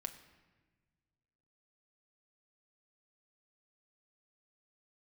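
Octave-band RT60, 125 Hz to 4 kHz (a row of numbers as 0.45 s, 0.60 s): 2.4 s, 1.9 s, 1.4 s, 1.2 s, 1.3 s, 0.95 s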